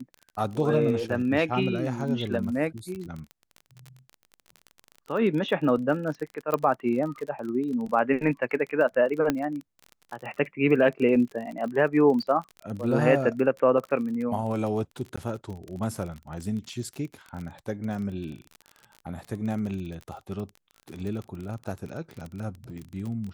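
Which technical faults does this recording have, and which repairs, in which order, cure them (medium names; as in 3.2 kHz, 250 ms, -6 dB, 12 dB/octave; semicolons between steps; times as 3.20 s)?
crackle 34 per s -33 dBFS
6.54 s: pop -12 dBFS
9.30 s: pop -10 dBFS
15.16–15.18 s: dropout 15 ms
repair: de-click; interpolate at 15.16 s, 15 ms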